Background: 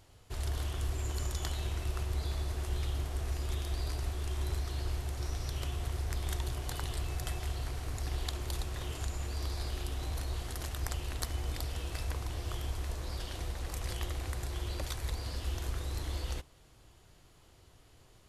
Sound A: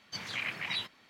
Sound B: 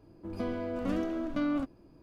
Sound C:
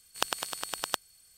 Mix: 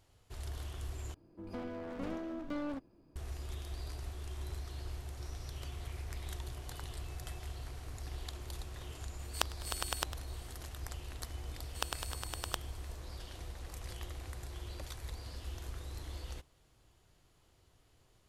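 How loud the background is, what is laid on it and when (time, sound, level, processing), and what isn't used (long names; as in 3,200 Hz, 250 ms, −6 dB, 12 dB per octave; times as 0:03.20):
background −7.5 dB
0:01.14: overwrite with B −7 dB + wavefolder on the positive side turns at −32 dBFS
0:05.52: mix in A −9.5 dB + downward compressor 3 to 1, threshold −53 dBFS
0:09.19: mix in C −1.5 dB + gate with flip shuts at −8 dBFS, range −32 dB
0:11.60: mix in C −7.5 dB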